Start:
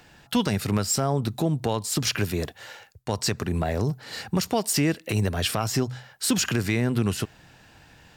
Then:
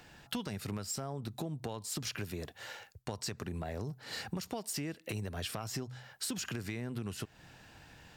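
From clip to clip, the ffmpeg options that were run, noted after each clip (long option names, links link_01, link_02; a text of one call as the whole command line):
ffmpeg -i in.wav -af "acompressor=threshold=-33dB:ratio=5,volume=-3.5dB" out.wav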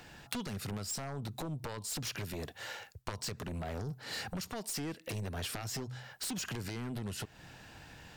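ffmpeg -i in.wav -af "aeval=exprs='0.0891*(cos(1*acos(clip(val(0)/0.0891,-1,1)))-cos(1*PI/2))+0.0398*(cos(3*acos(clip(val(0)/0.0891,-1,1)))-cos(3*PI/2))+0.00398*(cos(7*acos(clip(val(0)/0.0891,-1,1)))-cos(7*PI/2))':channel_layout=same,volume=7dB" out.wav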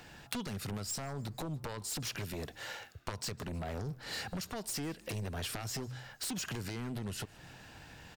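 ffmpeg -i in.wav -filter_complex "[0:a]asplit=5[link_01][link_02][link_03][link_04][link_05];[link_02]adelay=155,afreqshift=-110,volume=-23.5dB[link_06];[link_03]adelay=310,afreqshift=-220,volume=-28.4dB[link_07];[link_04]adelay=465,afreqshift=-330,volume=-33.3dB[link_08];[link_05]adelay=620,afreqshift=-440,volume=-38.1dB[link_09];[link_01][link_06][link_07][link_08][link_09]amix=inputs=5:normalize=0" out.wav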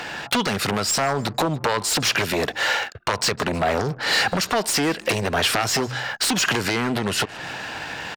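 ffmpeg -i in.wav -filter_complex "[0:a]anlmdn=0.0000631,asplit=2[link_01][link_02];[link_02]highpass=frequency=720:poles=1,volume=25dB,asoftclip=type=tanh:threshold=-11.5dB[link_03];[link_01][link_03]amix=inputs=2:normalize=0,lowpass=frequency=3100:poles=1,volume=-6dB,volume=6.5dB" out.wav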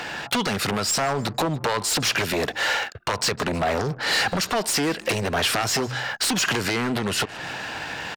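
ffmpeg -i in.wav -af "asoftclip=type=tanh:threshold=-15.5dB" out.wav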